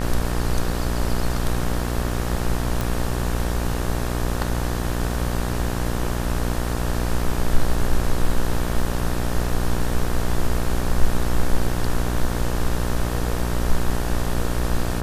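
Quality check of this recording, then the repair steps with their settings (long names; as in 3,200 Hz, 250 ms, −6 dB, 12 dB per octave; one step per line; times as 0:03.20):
mains buzz 60 Hz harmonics 31 −25 dBFS
0:02.81: click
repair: click removal
hum removal 60 Hz, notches 31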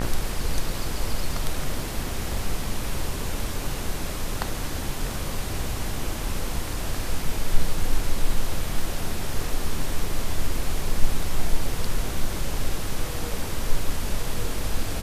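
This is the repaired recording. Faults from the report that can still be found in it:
none of them is left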